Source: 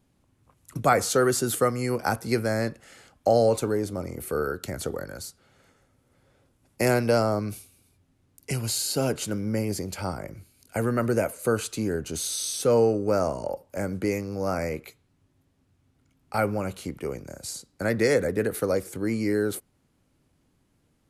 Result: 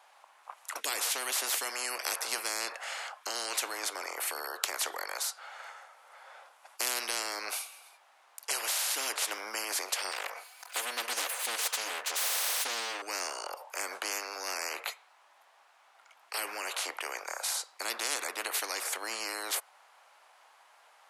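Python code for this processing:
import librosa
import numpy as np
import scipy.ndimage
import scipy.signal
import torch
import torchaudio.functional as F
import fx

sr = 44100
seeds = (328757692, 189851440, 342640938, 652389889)

y = fx.lower_of_two(x, sr, delay_ms=4.0, at=(10.11, 13.02))
y = scipy.signal.sosfilt(scipy.signal.butter(6, 760.0, 'highpass', fs=sr, output='sos'), y)
y = fx.tilt_eq(y, sr, slope=-4.0)
y = fx.spectral_comp(y, sr, ratio=10.0)
y = y * 10.0 ** (5.5 / 20.0)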